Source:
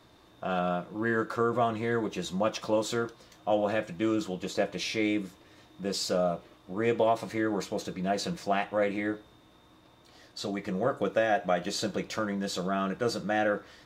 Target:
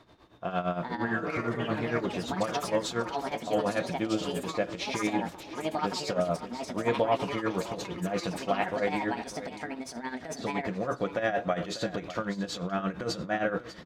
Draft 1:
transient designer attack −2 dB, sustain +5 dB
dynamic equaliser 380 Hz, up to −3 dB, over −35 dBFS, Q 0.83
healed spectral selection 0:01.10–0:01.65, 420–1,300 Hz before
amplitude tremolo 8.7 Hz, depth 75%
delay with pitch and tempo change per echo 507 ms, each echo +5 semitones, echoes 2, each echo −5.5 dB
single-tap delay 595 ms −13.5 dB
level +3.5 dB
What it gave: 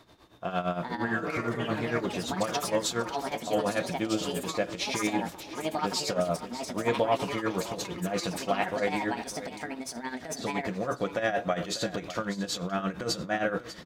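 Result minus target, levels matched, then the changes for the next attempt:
4,000 Hz band +3.0 dB
add after dynamic equaliser: low-pass filter 3,300 Hz 6 dB per octave

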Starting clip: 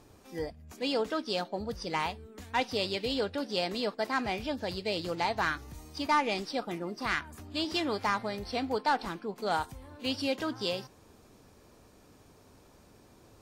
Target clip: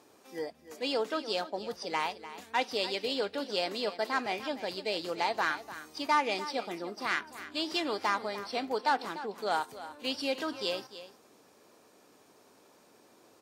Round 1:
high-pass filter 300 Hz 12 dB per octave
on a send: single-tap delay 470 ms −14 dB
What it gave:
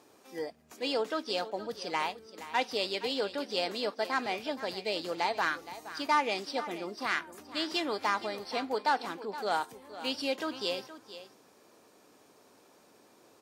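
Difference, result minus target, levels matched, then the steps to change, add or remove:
echo 173 ms late
change: single-tap delay 297 ms −14 dB

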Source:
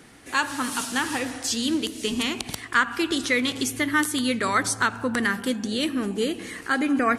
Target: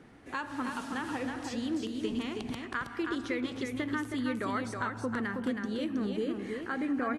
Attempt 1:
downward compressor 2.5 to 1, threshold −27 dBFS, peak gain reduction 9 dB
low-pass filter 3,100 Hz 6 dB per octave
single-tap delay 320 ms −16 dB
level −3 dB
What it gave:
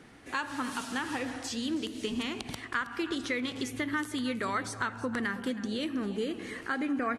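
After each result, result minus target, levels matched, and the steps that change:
echo-to-direct −11 dB; 4,000 Hz band +5.0 dB
change: single-tap delay 320 ms −5 dB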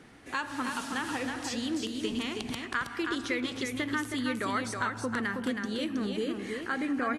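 4,000 Hz band +5.0 dB
change: low-pass filter 1,100 Hz 6 dB per octave

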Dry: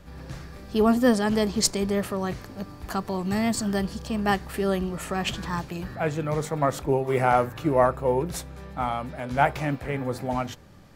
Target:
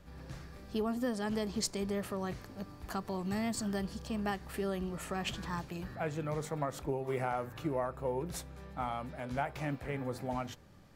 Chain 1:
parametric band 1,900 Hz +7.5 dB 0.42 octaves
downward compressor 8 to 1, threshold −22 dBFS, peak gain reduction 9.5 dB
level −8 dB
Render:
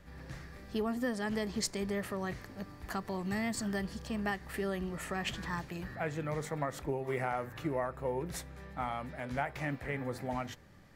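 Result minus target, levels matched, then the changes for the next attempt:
2,000 Hz band +4.0 dB
remove: parametric band 1,900 Hz +7.5 dB 0.42 octaves

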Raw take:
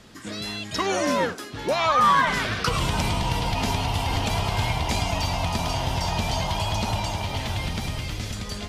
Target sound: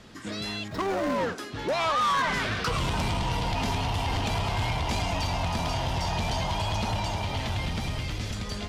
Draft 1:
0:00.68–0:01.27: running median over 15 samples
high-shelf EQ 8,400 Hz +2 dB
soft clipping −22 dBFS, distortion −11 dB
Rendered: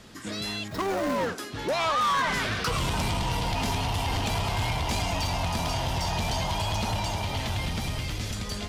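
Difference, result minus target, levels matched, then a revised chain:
8,000 Hz band +3.5 dB
0:00.68–0:01.27: running median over 15 samples
high-shelf EQ 8,400 Hz −9 dB
soft clipping −22 dBFS, distortion −12 dB

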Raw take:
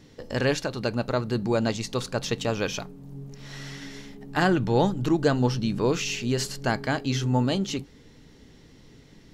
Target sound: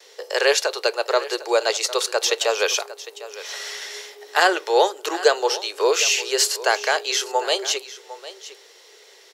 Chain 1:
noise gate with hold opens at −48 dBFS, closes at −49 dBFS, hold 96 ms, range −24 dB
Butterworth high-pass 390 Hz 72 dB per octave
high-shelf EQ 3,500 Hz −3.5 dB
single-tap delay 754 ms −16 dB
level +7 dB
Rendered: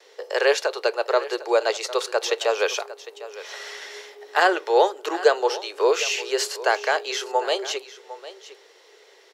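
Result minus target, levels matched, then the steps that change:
8,000 Hz band −6.5 dB
change: high-shelf EQ 3,500 Hz +7.5 dB

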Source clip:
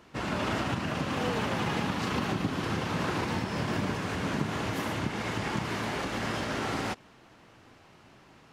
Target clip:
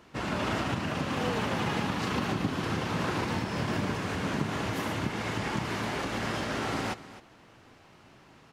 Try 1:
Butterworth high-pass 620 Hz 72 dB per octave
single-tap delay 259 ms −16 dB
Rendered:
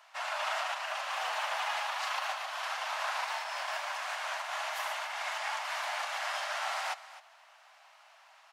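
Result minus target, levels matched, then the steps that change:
500 Hz band −5.0 dB
remove: Butterworth high-pass 620 Hz 72 dB per octave

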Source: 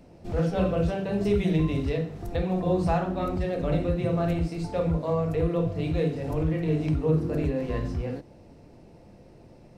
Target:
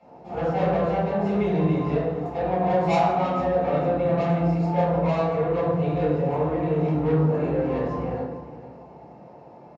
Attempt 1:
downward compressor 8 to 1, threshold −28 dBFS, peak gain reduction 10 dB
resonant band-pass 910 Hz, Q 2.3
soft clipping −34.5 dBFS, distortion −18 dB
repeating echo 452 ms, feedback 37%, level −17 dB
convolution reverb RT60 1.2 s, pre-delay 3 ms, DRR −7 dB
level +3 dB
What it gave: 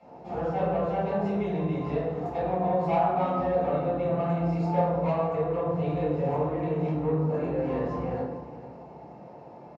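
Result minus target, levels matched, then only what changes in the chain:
downward compressor: peak gain reduction +10 dB
remove: downward compressor 8 to 1, threshold −28 dBFS, peak gain reduction 10 dB

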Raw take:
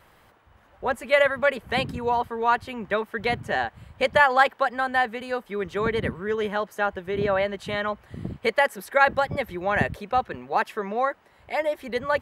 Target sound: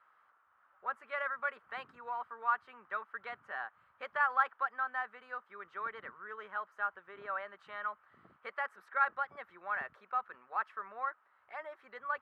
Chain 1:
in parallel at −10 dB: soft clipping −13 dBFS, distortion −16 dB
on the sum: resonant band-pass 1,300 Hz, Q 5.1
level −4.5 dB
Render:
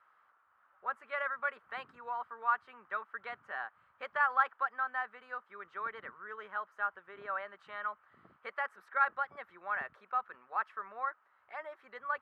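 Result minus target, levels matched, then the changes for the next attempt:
soft clipping: distortion −9 dB
change: soft clipping −23 dBFS, distortion −7 dB

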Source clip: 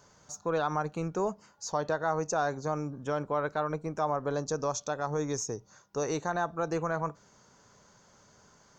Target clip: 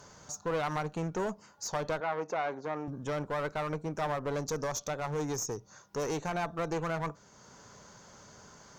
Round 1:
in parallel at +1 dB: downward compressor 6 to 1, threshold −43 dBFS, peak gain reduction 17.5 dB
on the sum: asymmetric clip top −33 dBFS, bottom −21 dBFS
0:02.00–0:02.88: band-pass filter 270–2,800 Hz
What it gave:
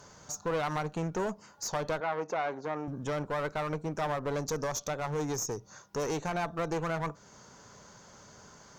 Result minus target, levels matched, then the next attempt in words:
downward compressor: peak gain reduction −9.5 dB
in parallel at +1 dB: downward compressor 6 to 1, threshold −54.5 dBFS, peak gain reduction 27 dB
on the sum: asymmetric clip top −33 dBFS, bottom −21 dBFS
0:02.00–0:02.88: band-pass filter 270–2,800 Hz

